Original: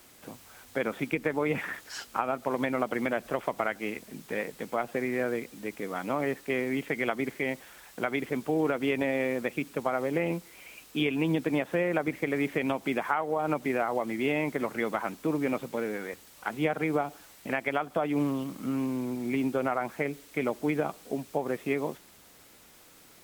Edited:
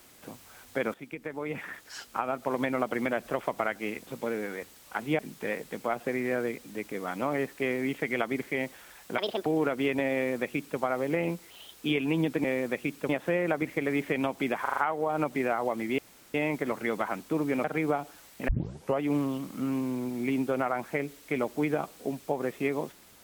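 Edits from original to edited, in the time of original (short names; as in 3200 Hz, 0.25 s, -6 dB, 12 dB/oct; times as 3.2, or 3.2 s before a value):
0.94–2.53 fade in, from -13.5 dB
8.06–8.49 speed 153%
9.17–9.82 copy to 11.55
10.53–10.87 speed 130%
13.07 stutter 0.04 s, 5 plays
14.28 insert room tone 0.36 s
15.58–16.7 move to 4.07
17.54 tape start 0.52 s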